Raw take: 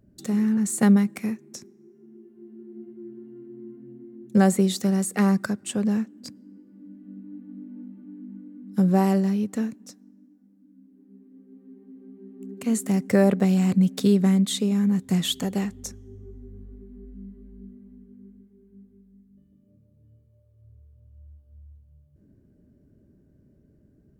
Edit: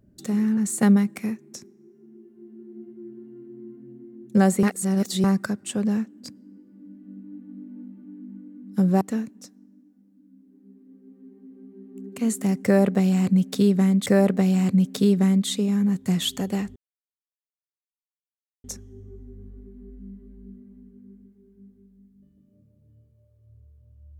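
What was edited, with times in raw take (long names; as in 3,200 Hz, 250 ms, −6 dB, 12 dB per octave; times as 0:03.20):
0:04.63–0:05.24: reverse
0:09.01–0:09.46: remove
0:13.09–0:14.51: repeat, 2 plays
0:15.79: splice in silence 1.88 s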